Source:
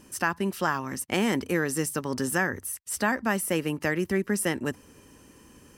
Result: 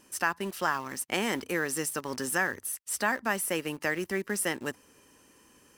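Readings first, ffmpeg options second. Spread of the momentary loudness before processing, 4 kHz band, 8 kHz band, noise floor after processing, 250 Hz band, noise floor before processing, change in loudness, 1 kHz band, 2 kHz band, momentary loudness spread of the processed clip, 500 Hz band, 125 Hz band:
6 LU, −0.5 dB, −0.5 dB, −61 dBFS, −7.0 dB, −55 dBFS, −3.0 dB, −1.5 dB, −1.0 dB, 5 LU, −4.0 dB, −9.0 dB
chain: -filter_complex "[0:a]lowshelf=frequency=280:gain=-12,asplit=2[link_01][link_02];[link_02]acrusher=bits=5:mix=0:aa=0.000001,volume=-10dB[link_03];[link_01][link_03]amix=inputs=2:normalize=0,volume=-3dB"

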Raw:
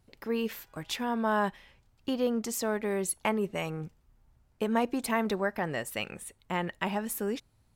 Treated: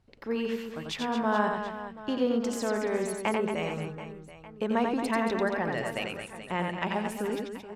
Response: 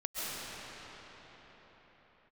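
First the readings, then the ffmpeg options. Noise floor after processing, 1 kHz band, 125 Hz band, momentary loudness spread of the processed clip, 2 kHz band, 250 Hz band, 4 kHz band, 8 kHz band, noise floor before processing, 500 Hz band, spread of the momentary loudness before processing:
−48 dBFS, +2.0 dB, +1.5 dB, 10 LU, +2.0 dB, +2.0 dB, +1.0 dB, −5.5 dB, −67 dBFS, +2.0 dB, 9 LU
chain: -af "bandreject=frequency=50:width_type=h:width=6,bandreject=frequency=100:width_type=h:width=6,bandreject=frequency=150:width_type=h:width=6,bandreject=frequency=200:width_type=h:width=6,aecho=1:1:90|225|427.5|731.2|1187:0.631|0.398|0.251|0.158|0.1,adynamicsmooth=sensitivity=2:basefreq=6300"

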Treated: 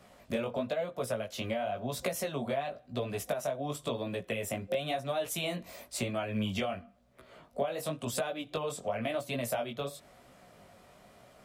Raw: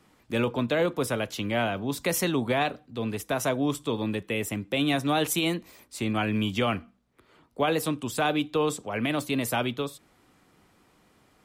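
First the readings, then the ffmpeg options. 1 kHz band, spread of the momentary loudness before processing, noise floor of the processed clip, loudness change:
−7.5 dB, 7 LU, −60 dBFS, −7.0 dB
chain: -af "superequalizer=6b=0.501:8b=3.16,acompressor=threshold=-33dB:ratio=12,flanger=delay=15.5:depth=6.7:speed=0.96,volume=6dB"

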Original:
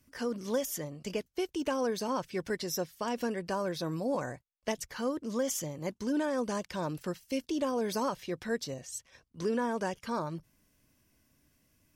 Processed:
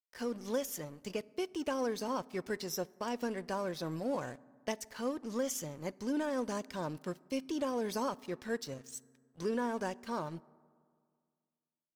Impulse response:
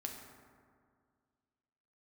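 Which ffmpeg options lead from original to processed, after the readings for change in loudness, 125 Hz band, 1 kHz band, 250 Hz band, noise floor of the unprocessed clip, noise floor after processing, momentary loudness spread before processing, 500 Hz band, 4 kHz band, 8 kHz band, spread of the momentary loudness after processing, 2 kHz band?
−3.5 dB, −4.5 dB, −3.0 dB, −3.5 dB, −74 dBFS, below −85 dBFS, 7 LU, −3.5 dB, −4.0 dB, −4.0 dB, 7 LU, −3.5 dB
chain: -filter_complex "[0:a]aeval=exprs='sgn(val(0))*max(abs(val(0))-0.00316,0)':channel_layout=same,asplit=2[link_01][link_02];[1:a]atrim=start_sample=2205[link_03];[link_02][link_03]afir=irnorm=-1:irlink=0,volume=-15.5dB[link_04];[link_01][link_04]amix=inputs=2:normalize=0,volume=-3.5dB"

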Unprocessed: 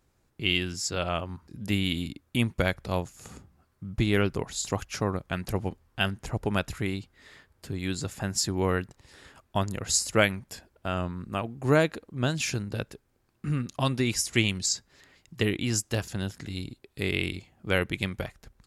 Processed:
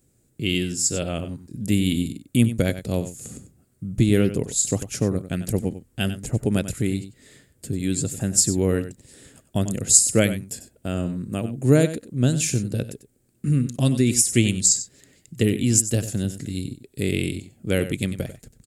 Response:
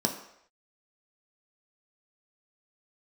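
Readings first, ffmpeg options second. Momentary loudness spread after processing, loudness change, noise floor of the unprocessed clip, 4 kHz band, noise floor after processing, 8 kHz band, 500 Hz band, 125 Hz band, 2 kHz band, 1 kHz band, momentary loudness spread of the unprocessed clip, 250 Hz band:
14 LU, +6.5 dB, −70 dBFS, +0.5 dB, −64 dBFS, +11.5 dB, +4.5 dB, +7.5 dB, −2.5 dB, −6.0 dB, 13 LU, +8.0 dB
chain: -filter_complex "[0:a]equalizer=frequency=125:width_type=o:width=1:gain=8,equalizer=frequency=250:width_type=o:width=1:gain=8,equalizer=frequency=500:width_type=o:width=1:gain=6,equalizer=frequency=1000:width_type=o:width=1:gain=-11,equalizer=frequency=8000:width_type=o:width=1:gain=9,aexciter=amount=3.3:drive=1.2:freq=7500,asplit=2[link_01][link_02];[link_02]aecho=0:1:95:0.237[link_03];[link_01][link_03]amix=inputs=2:normalize=0,volume=-1dB"

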